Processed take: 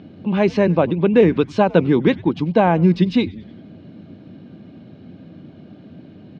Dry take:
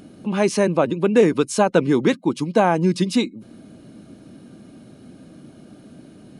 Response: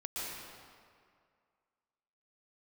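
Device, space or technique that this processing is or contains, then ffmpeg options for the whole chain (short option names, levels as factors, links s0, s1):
frequency-shifting delay pedal into a guitar cabinet: -filter_complex "[0:a]asplit=5[s0][s1][s2][s3][s4];[s1]adelay=96,afreqshift=-150,volume=0.0708[s5];[s2]adelay=192,afreqshift=-300,volume=0.0403[s6];[s3]adelay=288,afreqshift=-450,volume=0.0229[s7];[s4]adelay=384,afreqshift=-600,volume=0.0132[s8];[s0][s5][s6][s7][s8]amix=inputs=5:normalize=0,highpass=81,equalizer=f=94:t=q:w=4:g=10,equalizer=f=170:t=q:w=4:g=5,equalizer=f=1300:t=q:w=4:g=-5,lowpass=f=3800:w=0.5412,lowpass=f=3800:w=1.3066,volume=1.19"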